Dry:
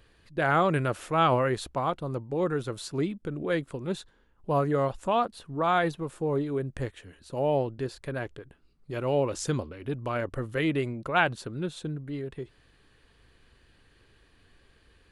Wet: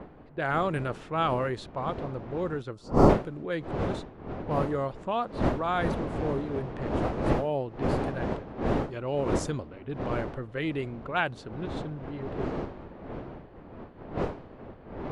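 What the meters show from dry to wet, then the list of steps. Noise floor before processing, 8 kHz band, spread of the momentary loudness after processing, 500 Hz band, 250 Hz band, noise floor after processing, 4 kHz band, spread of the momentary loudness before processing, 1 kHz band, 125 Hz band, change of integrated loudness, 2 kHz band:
-63 dBFS, -5.5 dB, 13 LU, -0.5 dB, +1.5 dB, -49 dBFS, -3.5 dB, 12 LU, -2.0 dB, +0.5 dB, -1.0 dB, -3.0 dB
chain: wind noise 500 Hz -28 dBFS; level-controlled noise filter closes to 2.2 kHz, open at -18.5 dBFS; time-frequency box 2.75–3.09 s, 1.4–4.3 kHz -12 dB; trim -4 dB

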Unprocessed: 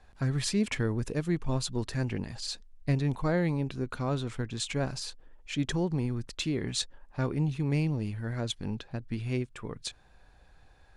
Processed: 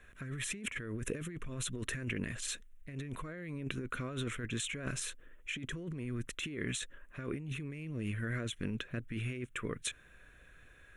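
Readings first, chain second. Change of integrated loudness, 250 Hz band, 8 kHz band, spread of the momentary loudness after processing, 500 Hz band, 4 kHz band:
-7.5 dB, -9.0 dB, -2.0 dB, 8 LU, -9.5 dB, -6.5 dB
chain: bass shelf 280 Hz -11.5 dB; static phaser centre 2 kHz, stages 4; compressor with a negative ratio -43 dBFS, ratio -1; trim +4 dB

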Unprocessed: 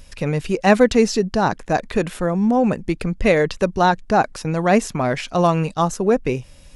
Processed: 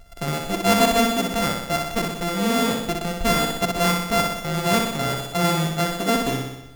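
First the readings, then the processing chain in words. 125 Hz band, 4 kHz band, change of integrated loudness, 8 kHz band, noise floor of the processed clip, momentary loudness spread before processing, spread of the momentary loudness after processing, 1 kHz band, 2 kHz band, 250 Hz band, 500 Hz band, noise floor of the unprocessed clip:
-3.0 dB, +7.0 dB, -2.5 dB, +5.0 dB, -39 dBFS, 8 LU, 7 LU, -3.0 dB, -1.0 dB, -4.0 dB, -6.0 dB, -44 dBFS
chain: sorted samples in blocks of 64 samples; flutter echo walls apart 10.6 m, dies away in 0.9 s; trim -5 dB

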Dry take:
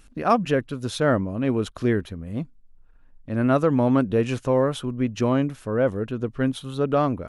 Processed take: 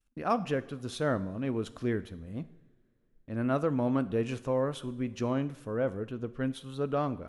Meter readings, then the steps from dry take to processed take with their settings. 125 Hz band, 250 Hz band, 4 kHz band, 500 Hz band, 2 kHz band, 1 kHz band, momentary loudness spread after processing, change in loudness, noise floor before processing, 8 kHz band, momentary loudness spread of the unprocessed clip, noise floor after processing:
-9.0 dB, -9.0 dB, -9.0 dB, -8.5 dB, -9.0 dB, -9.0 dB, 10 LU, -9.0 dB, -52 dBFS, -9.0 dB, 10 LU, -70 dBFS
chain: expander -41 dBFS; two-slope reverb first 0.66 s, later 3 s, from -19 dB, DRR 13.5 dB; trim -9 dB

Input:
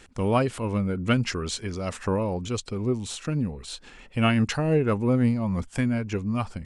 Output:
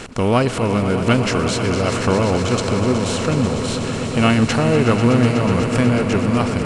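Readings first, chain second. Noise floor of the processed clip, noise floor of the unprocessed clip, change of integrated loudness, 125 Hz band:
-23 dBFS, -50 dBFS, +8.5 dB, +8.0 dB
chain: spectral levelling over time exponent 0.6; on a send: echo with a slow build-up 123 ms, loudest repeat 5, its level -12 dB; on the sum: trim +4 dB

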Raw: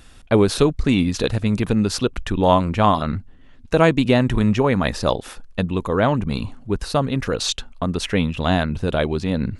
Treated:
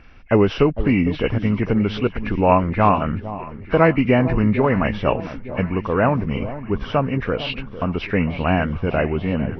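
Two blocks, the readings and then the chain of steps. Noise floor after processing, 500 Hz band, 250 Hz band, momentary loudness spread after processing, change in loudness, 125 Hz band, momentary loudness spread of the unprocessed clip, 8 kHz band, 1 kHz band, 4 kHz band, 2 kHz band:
-36 dBFS, +0.5 dB, +0.5 dB, 9 LU, 0.0 dB, +0.5 dB, 9 LU, under -20 dB, +1.0 dB, -6.5 dB, +1.5 dB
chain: knee-point frequency compression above 1.6 kHz 1.5:1; resonant high shelf 3.2 kHz -9.5 dB, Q 1.5; echo whose repeats swap between lows and highs 454 ms, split 920 Hz, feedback 69%, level -12.5 dB

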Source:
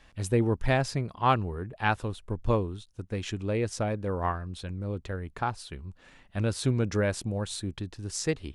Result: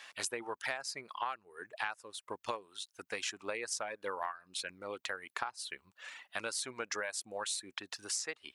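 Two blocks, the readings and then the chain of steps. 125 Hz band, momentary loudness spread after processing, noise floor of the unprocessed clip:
-33.5 dB, 8 LU, -59 dBFS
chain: reverb removal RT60 0.84 s; Bessel high-pass 1.3 kHz, order 2; dynamic bell 3.3 kHz, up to -6 dB, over -54 dBFS, Q 2.2; compression 16:1, threshold -45 dBFS, peak gain reduction 22.5 dB; trim +11 dB

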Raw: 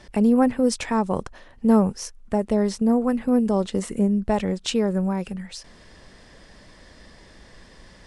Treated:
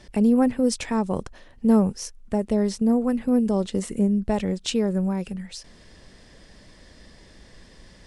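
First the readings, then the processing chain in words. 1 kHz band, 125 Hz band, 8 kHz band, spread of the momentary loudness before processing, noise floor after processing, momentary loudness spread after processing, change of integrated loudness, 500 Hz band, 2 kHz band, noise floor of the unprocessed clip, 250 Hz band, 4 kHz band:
-4.5 dB, -0.5 dB, 0.0 dB, 11 LU, -51 dBFS, 11 LU, -1.0 dB, -2.0 dB, -3.0 dB, -50 dBFS, -0.5 dB, -1.0 dB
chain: peaking EQ 1.1 kHz -5 dB 1.9 oct

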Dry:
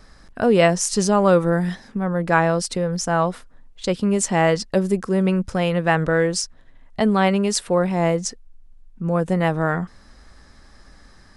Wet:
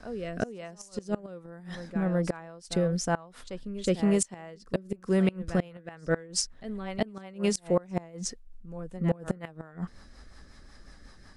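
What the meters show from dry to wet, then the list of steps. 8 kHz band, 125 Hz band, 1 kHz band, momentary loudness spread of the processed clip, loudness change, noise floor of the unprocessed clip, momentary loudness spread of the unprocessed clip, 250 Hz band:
-9.0 dB, -9.5 dB, -17.0 dB, 16 LU, -11.0 dB, -49 dBFS, 10 LU, -9.0 dB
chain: reverse echo 367 ms -16 dB; rotary cabinet horn 1.1 Hz, later 5.5 Hz, at 5.25 s; inverted gate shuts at -12 dBFS, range -25 dB; trim -1.5 dB

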